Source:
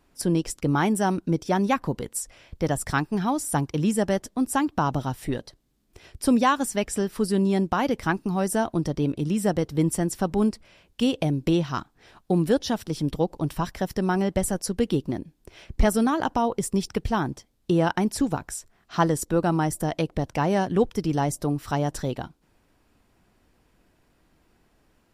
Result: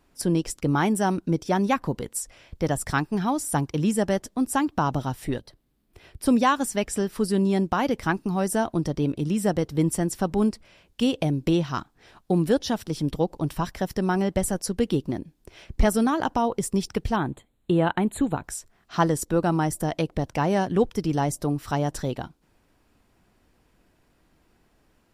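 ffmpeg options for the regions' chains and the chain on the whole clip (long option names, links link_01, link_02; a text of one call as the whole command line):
ffmpeg -i in.wav -filter_complex "[0:a]asettb=1/sr,asplit=3[link_01][link_02][link_03];[link_01]atrim=end=5.394[link_04];[link_02]atrim=start=5.39:end=6.26,asetpts=PTS-STARTPTS,afade=type=in:duration=0.004:curve=qsin,afade=type=out:start_time=0.866:duration=0.004:curve=qsin,acrossover=split=160|3000[link_05][link_06][link_07];[link_06]acompressor=threshold=-46dB:ratio=6:attack=3.2:release=140:knee=2.83:detection=peak[link_08];[link_05][link_08][link_07]amix=inputs=3:normalize=0,equalizer=frequency=6500:width=1.2:gain=-7.5[link_09];[link_03]atrim=start=6.256[link_10];[link_04][link_09]acrossfade=duration=0.004:curve1=hsin:curve2=qsin[link_11];[link_11][link_10]acrossfade=duration=0.004:curve1=qsin:curve2=hsin,asettb=1/sr,asplit=3[link_12][link_13][link_14];[link_12]atrim=end=17.164[link_15];[link_13]atrim=start=17.16:end=18.44,asetpts=PTS-STARTPTS,afade=type=in:duration=0.004:curve=qsin,afade=type=out:start_time=1.276:duration=0.004:curve=qsin,asuperstop=centerf=5400:order=12:qfactor=2.1,highshelf=frequency=8600:gain=-7[link_16];[link_14]atrim=start=18.436[link_17];[link_15][link_16]acrossfade=duration=0.004:curve1=hsin:curve2=qsin[link_18];[link_18][link_17]acrossfade=duration=0.004:curve1=qsin:curve2=hsin" out.wav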